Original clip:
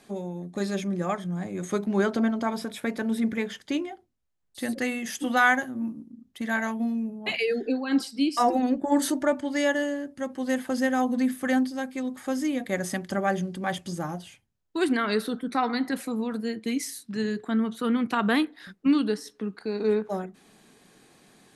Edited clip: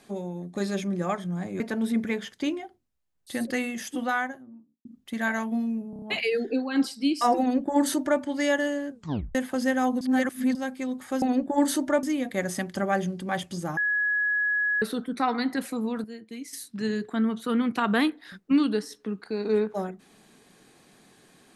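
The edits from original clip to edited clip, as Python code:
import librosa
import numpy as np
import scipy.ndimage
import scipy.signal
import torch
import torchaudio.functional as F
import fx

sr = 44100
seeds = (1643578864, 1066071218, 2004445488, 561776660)

y = fx.studio_fade_out(x, sr, start_s=4.86, length_s=1.27)
y = fx.edit(y, sr, fx.cut(start_s=1.6, length_s=1.28),
    fx.stutter(start_s=7.18, slice_s=0.03, count=5),
    fx.duplicate(start_s=8.56, length_s=0.81, to_s=12.38),
    fx.tape_stop(start_s=10.06, length_s=0.45),
    fx.reverse_span(start_s=11.17, length_s=0.54),
    fx.bleep(start_s=14.12, length_s=1.05, hz=1680.0, db=-22.0),
    fx.clip_gain(start_s=16.39, length_s=0.49, db=-10.5), tone=tone)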